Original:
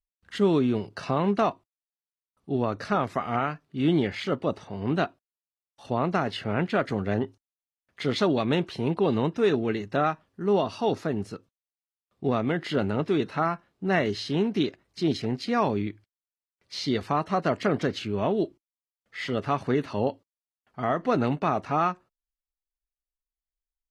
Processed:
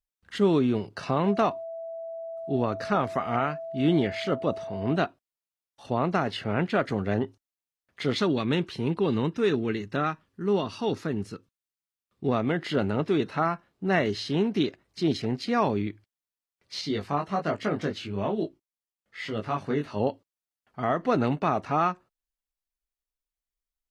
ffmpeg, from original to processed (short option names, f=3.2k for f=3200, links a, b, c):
-filter_complex "[0:a]asettb=1/sr,asplit=3[a][b][c];[a]atrim=end=1.264[d];[b]atrim=start=1.26:end=4.96,asetpts=PTS-STARTPTS,afade=t=in:d=0.004:c=qsin,afade=t=out:st=3.696:d=0.004:c=qsin,aeval=exprs='val(0)+0.02*sin(2*PI*660*n/s)':c=same[e];[c]atrim=start=4.956[f];[d][e]acrossfade=d=0.004:c1=hsin:c2=qsin[g];[g][f]acrossfade=d=0.004:c1=qsin:c2=hsin,asettb=1/sr,asplit=3[h][i][j];[h]atrim=end=8.184[k];[i]atrim=start=8.18:end=12.28,asetpts=PTS-STARTPTS,afade=t=in:d=0.004:c=qsin,afade=t=out:st=4.096:d=0.004:c=qsin,equalizer=f=680:t=o:w=0.78:g=-8[l];[j]atrim=start=12.276[m];[k][l]acrossfade=d=0.004:c1=hsin:c2=qsin[n];[n][m]acrossfade=d=0.004:c1=qsin:c2=hsin,asettb=1/sr,asplit=3[o][p][q];[o]atrim=end=16.814[r];[p]atrim=start=16.81:end=20,asetpts=PTS-STARTPTS,afade=t=in:d=0.004:c=qsin,afade=t=out:st=3.186:d=0.004:c=qsin,flanger=delay=18.5:depth=2.4:speed=1.2[s];[q]atrim=start=19.996[t];[r][s]acrossfade=d=0.004:c1=hsin:c2=qsin[u];[u][t]acrossfade=d=0.004:c1=qsin:c2=hsin"